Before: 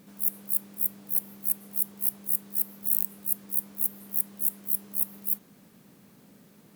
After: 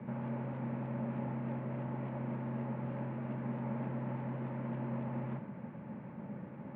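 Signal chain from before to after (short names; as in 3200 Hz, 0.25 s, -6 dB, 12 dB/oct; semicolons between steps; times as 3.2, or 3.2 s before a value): mistuned SSB -69 Hz 200–2400 Hz; small resonant body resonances 220/570/860 Hz, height 13 dB, ringing for 35 ms; three-band expander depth 40%; gain +7.5 dB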